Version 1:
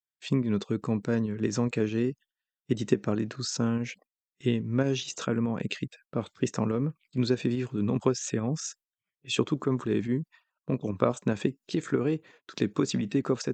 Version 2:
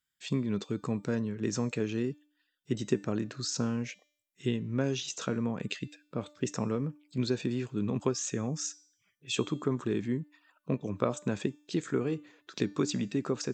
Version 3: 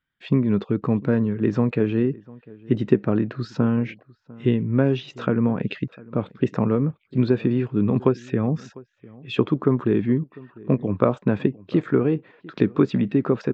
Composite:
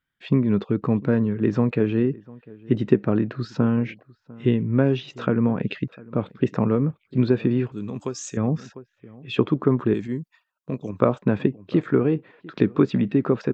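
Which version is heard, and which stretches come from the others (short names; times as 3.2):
3
7.72–8.37 from 2
9.94–11 from 1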